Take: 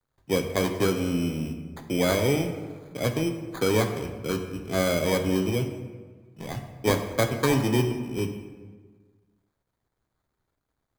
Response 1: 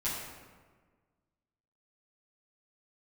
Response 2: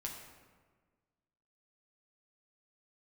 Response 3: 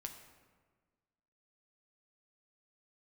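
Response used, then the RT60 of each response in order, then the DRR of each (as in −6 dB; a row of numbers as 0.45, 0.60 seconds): 3; 1.5, 1.5, 1.5 seconds; −10.5, −1.0, 4.0 decibels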